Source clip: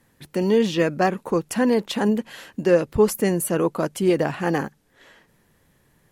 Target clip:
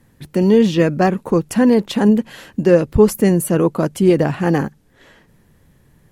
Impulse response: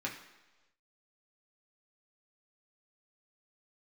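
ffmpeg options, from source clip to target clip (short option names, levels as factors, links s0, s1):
-af "lowshelf=f=290:g=10,volume=1.26"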